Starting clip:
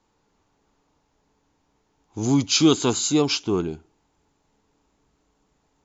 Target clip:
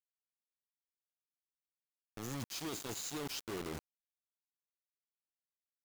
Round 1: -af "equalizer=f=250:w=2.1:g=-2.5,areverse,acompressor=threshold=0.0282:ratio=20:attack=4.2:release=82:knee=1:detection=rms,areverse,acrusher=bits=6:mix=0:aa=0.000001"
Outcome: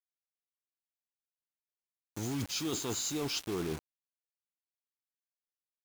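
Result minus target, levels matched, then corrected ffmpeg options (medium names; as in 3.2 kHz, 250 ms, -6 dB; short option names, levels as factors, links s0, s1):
compression: peak gain reduction -8 dB
-af "equalizer=f=250:w=2.1:g=-2.5,areverse,acompressor=threshold=0.0106:ratio=20:attack=4.2:release=82:knee=1:detection=rms,areverse,acrusher=bits=6:mix=0:aa=0.000001"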